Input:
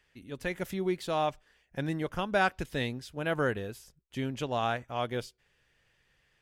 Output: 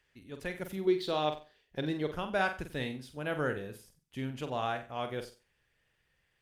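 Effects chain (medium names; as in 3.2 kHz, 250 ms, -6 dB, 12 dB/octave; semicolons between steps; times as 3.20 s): 0.87–2.15 s: fifteen-band graphic EQ 400 Hz +8 dB, 4 kHz +11 dB, 10 kHz -6 dB; flutter echo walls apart 7.9 m, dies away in 0.34 s; trim -4 dB; Opus 48 kbps 48 kHz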